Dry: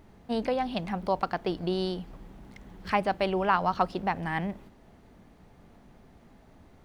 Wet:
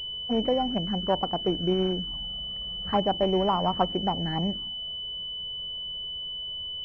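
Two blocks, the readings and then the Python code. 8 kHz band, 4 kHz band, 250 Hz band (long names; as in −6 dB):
can't be measured, +16.0 dB, +4.0 dB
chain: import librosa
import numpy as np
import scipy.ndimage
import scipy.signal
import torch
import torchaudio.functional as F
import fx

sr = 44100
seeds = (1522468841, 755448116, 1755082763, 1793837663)

y = fx.env_flanger(x, sr, rest_ms=2.1, full_db=-25.5)
y = fx.pwm(y, sr, carrier_hz=3000.0)
y = F.gain(torch.from_numpy(y), 4.5).numpy()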